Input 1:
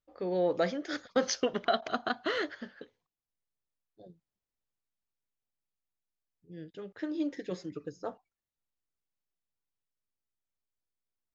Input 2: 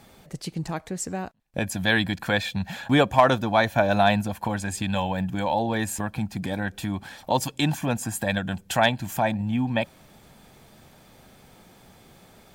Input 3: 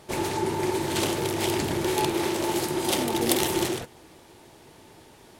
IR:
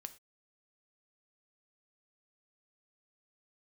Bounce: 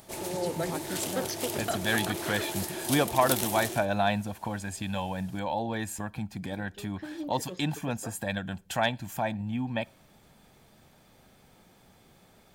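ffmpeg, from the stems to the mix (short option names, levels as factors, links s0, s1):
-filter_complex "[0:a]volume=0.562[s0];[1:a]volume=0.376,asplit=2[s1][s2];[s2]volume=0.447[s3];[2:a]equalizer=f=650:w=5.7:g=9,acompressor=mode=upward:threshold=0.00891:ratio=2.5,crystalizer=i=2:c=0,volume=0.251[s4];[3:a]atrim=start_sample=2205[s5];[s3][s5]afir=irnorm=-1:irlink=0[s6];[s0][s1][s4][s6]amix=inputs=4:normalize=0,aeval=exprs='0.282*(abs(mod(val(0)/0.282+3,4)-2)-1)':c=same"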